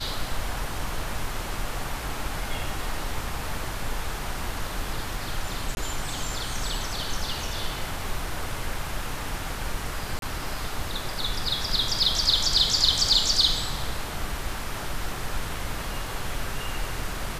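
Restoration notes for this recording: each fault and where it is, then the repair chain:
0:05.75–0:05.77: drop-out 21 ms
0:10.19–0:10.22: drop-out 32 ms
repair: repair the gap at 0:05.75, 21 ms
repair the gap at 0:10.19, 32 ms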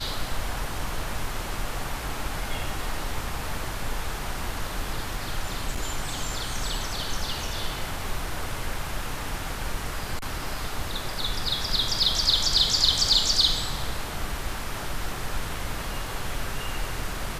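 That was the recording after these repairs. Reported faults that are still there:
none of them is left

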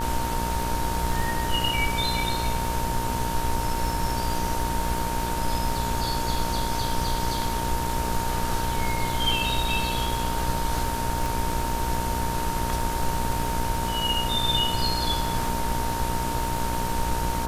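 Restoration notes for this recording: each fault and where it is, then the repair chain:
mains buzz 60 Hz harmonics 29 −31 dBFS
surface crackle 57 per second −31 dBFS
whistle 920 Hz −29 dBFS
0:11.26: click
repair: click removal
hum removal 60 Hz, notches 29
notch filter 920 Hz, Q 30

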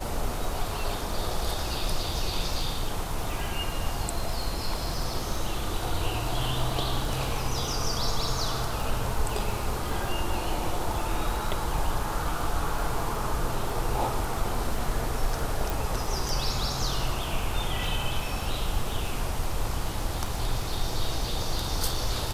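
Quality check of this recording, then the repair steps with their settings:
surface crackle 52 per second −33 dBFS
0:15.70: click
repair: click removal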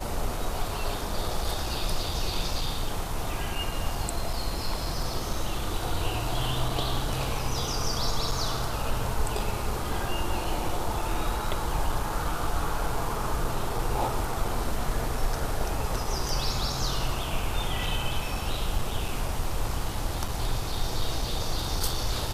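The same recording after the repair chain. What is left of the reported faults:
none of them is left

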